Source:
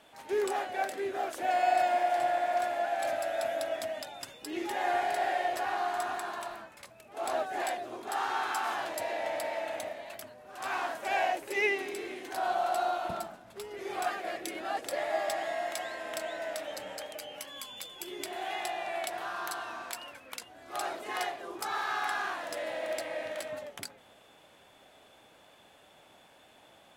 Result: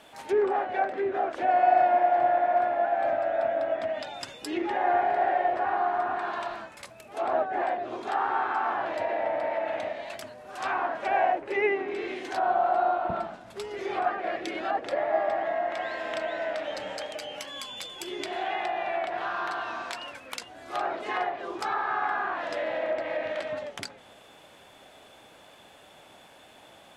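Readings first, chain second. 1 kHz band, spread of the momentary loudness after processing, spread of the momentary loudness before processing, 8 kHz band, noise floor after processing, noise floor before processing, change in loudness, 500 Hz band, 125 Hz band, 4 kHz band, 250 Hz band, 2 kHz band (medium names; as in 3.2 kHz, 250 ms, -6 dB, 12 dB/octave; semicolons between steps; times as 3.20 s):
+5.5 dB, 13 LU, 12 LU, -6.0 dB, -53 dBFS, -59 dBFS, +5.0 dB, +6.0 dB, +6.0 dB, +0.5 dB, +6.0 dB, +2.5 dB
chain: low-pass that closes with the level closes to 1.5 kHz, closed at -30 dBFS; trim +6 dB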